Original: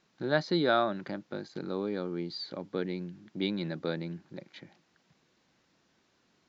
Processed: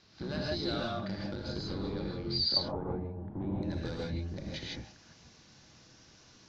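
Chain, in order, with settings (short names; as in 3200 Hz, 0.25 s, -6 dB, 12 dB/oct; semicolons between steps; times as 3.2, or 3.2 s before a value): octaver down 1 oct, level +2 dB; compressor 5:1, threshold -42 dBFS, peak gain reduction 19 dB; hard clip -37 dBFS, distortion -18 dB; synth low-pass 4900 Hz, resonance Q 3.3, from 2.56 s 880 Hz, from 3.63 s 5800 Hz; non-linear reverb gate 0.18 s rising, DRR -3.5 dB; gain +3.5 dB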